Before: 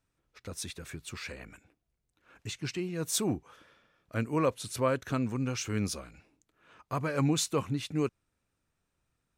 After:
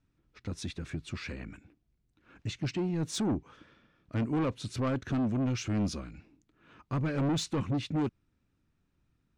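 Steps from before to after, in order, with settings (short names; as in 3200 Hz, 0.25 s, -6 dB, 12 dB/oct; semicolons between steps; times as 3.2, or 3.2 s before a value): LPF 5300 Hz 12 dB/oct; resonant low shelf 390 Hz +7 dB, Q 1.5; soft clip -25.5 dBFS, distortion -7 dB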